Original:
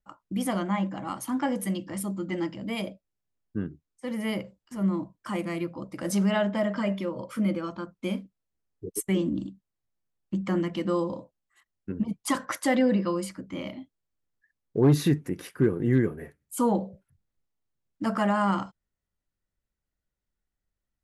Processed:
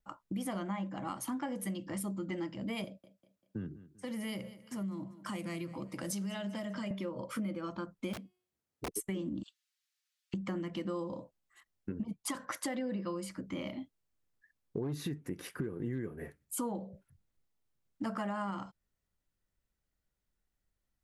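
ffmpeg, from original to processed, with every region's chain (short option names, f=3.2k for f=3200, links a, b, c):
-filter_complex "[0:a]asettb=1/sr,asplit=3[a][b][c];[a]atrim=end=2.844[d];[b]atrim=start=2.84:end=6.91,asetpts=PTS-STARTPTS,afade=t=in:d=0.004:c=qsin,afade=t=out:st=4.066:d=0.004:c=qsin,acrossover=split=150|3000[e][f][g];[f]acompressor=threshold=-39dB:ratio=3:attack=3.2:release=140:knee=2.83:detection=peak[h];[e][h][g]amix=inputs=3:normalize=0,highpass=87,aecho=1:1:196|392|588:0.106|0.0413|0.0161,atrim=end_sample=179487[i];[c]atrim=start=6.906[j];[d][i]acrossfade=d=0.004:c1=hsin:c2=qsin[k];[k][j]acrossfade=d=0.004:c1=qsin:c2=hsin,asettb=1/sr,asplit=3[l][m][n];[l]atrim=end=8.134[o];[m]atrim=start=8.13:end=8.91,asetpts=PTS-STARTPTS,afade=t=in:d=0.004:c=qsin,afade=t=out:st=0.776:d=0.004:c=qsin,highpass=87,bandreject=f=363.5:t=h:w=4,bandreject=f=727:t=h:w=4,bandreject=f=1.0905k:t=h:w=4,bandreject=f=1.454k:t=h:w=4,bandreject=f=1.8175k:t=h:w=4,bandreject=f=2.181k:t=h:w=4,bandreject=f=2.5445k:t=h:w=4,bandreject=f=2.908k:t=h:w=4,bandreject=f=3.2715k:t=h:w=4,bandreject=f=3.635k:t=h:w=4,bandreject=f=3.9985k:t=h:w=4,bandreject=f=4.362k:t=h:w=4,bandreject=f=4.7255k:t=h:w=4,bandreject=f=5.089k:t=h:w=4,bandreject=f=5.4525k:t=h:w=4,bandreject=f=5.816k:t=h:w=4,bandreject=f=6.1795k:t=h:w=4,bandreject=f=6.543k:t=h:w=4,bandreject=f=6.9065k:t=h:w=4,bandreject=f=7.27k:t=h:w=4,bandreject=f=7.6335k:t=h:w=4,bandreject=f=7.997k:t=h:w=4,bandreject=f=8.3605k:t=h:w=4,bandreject=f=8.724k:t=h:w=4,bandreject=f=9.0875k:t=h:w=4,bandreject=f=9.451k:t=h:w=4,bandreject=f=9.8145k:t=h:w=4,bandreject=f=10.178k:t=h:w=4,bandreject=f=10.5415k:t=h:w=4,bandreject=f=10.905k:t=h:w=4,bandreject=f=11.2685k:t=h:w=4,bandreject=f=11.632k:t=h:w=4,bandreject=f=11.9955k:t=h:w=4,bandreject=f=12.359k:t=h:w=4,bandreject=f=12.7225k:t=h:w=4,bandreject=f=13.086k:t=h:w=4,bandreject=f=13.4495k:t=h:w=4,aeval=exprs='(mod(31.6*val(0)+1,2)-1)/31.6':c=same[p];[n]atrim=start=8.906[q];[o][p]acrossfade=d=0.004:c1=hsin:c2=qsin[r];[r][q]acrossfade=d=0.004:c1=qsin:c2=hsin,asettb=1/sr,asplit=3[s][t][u];[s]atrim=end=9.434[v];[t]atrim=start=9.43:end=10.34,asetpts=PTS-STARTPTS,afade=t=in:d=0.004:c=qsin,afade=t=out:st=0.906:d=0.004:c=qsin,highpass=f=1.4k:w=0.5412,highpass=f=1.4k:w=1.3066,equalizer=f=4.2k:t=o:w=2.3:g=9.5,aecho=1:1:6.3:0.8,atrim=end_sample=40131[w];[u]atrim=start=10.336[x];[v][w]acrossfade=d=0.004:c1=hsin:c2=qsin[y];[y][x]acrossfade=d=0.004:c1=qsin:c2=hsin,alimiter=limit=-17.5dB:level=0:latency=1:release=241,acompressor=threshold=-37dB:ratio=4,volume=1dB"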